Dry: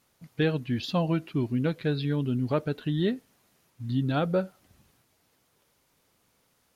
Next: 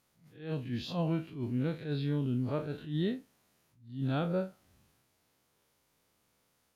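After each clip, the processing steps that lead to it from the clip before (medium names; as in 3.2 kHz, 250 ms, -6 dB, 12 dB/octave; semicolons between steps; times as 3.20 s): spectral blur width 81 ms; attacks held to a fixed rise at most 130 dB/s; trim -3.5 dB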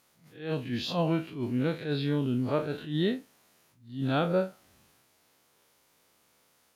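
bass shelf 190 Hz -10.5 dB; trim +8 dB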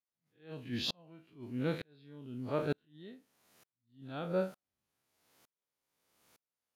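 sawtooth tremolo in dB swelling 1.1 Hz, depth 39 dB; trim +1.5 dB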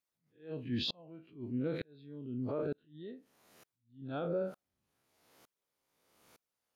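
resonances exaggerated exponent 1.5; peak limiter -31 dBFS, peak gain reduction 9.5 dB; trim +4 dB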